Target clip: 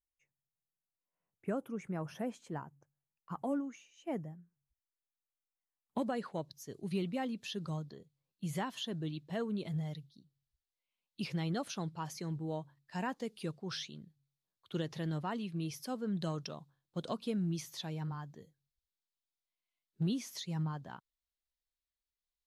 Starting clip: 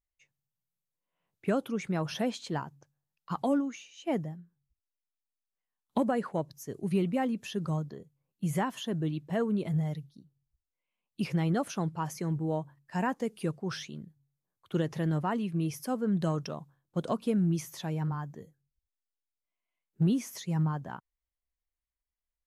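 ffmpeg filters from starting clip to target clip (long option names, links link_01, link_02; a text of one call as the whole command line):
ffmpeg -i in.wav -af "asetnsamples=nb_out_samples=441:pad=0,asendcmd='3.49 equalizer g -7;5.98 equalizer g 11',equalizer=frequency=4000:width_type=o:width=0.98:gain=-14,volume=-7.5dB" out.wav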